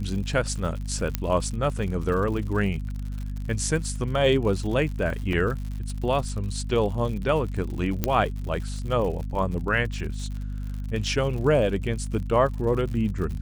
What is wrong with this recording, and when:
crackle 88/s -33 dBFS
hum 50 Hz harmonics 5 -31 dBFS
1.15 pop -9 dBFS
5.33 gap 2.4 ms
8.04 pop -8 dBFS

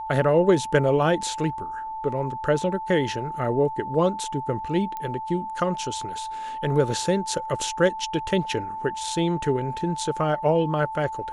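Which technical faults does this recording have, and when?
tone 880 Hz -30 dBFS
4.97 pop -19 dBFS

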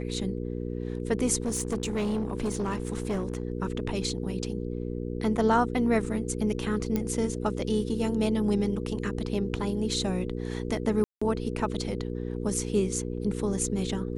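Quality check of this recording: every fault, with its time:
hum 60 Hz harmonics 8 -33 dBFS
1.42–3.43 clipped -24.5 dBFS
6.96 pop -15 dBFS
11.04–11.21 gap 0.175 s

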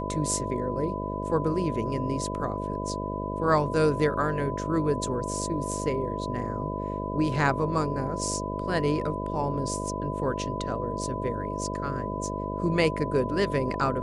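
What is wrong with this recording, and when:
buzz 50 Hz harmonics 13 -33 dBFS
tone 1000 Hz -34 dBFS

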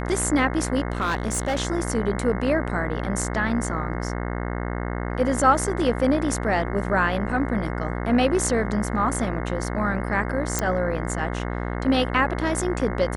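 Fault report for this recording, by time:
buzz 60 Hz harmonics 36 -28 dBFS
0.92–1.57 clipped -19.5 dBFS
10.59 pop -8 dBFS

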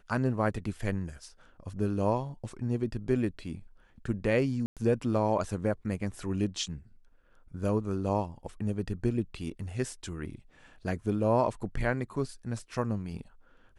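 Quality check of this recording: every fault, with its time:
4.66–4.77 gap 0.107 s

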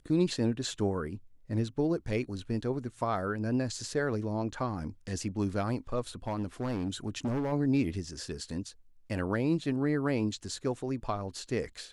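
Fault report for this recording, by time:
6.27–7.53 clipped -28 dBFS

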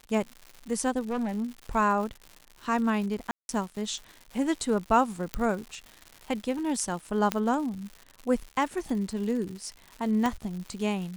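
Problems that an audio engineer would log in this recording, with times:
crackle 190/s -36 dBFS
1–1.46 clipped -26 dBFS
3.31–3.49 gap 0.181 s
5.34 pop -13 dBFS
7.32 pop -9 dBFS
10.26 pop -15 dBFS

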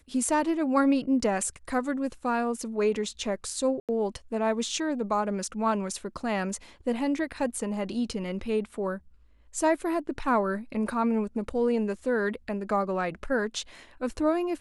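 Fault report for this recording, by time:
3.8–3.89 gap 87 ms

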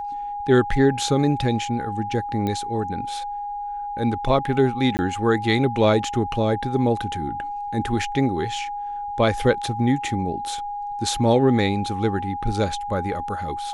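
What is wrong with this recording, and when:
tone 820 Hz -27 dBFS
2.47 pop -14 dBFS
4.97–4.99 gap 19 ms

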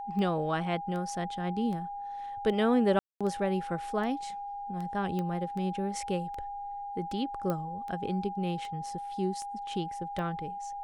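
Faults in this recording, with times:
tick 78 rpm -28 dBFS
tone 810 Hz -36 dBFS
2.99–3.21 gap 0.216 s
5.19 pop -22 dBFS
7.5 pop -19 dBFS

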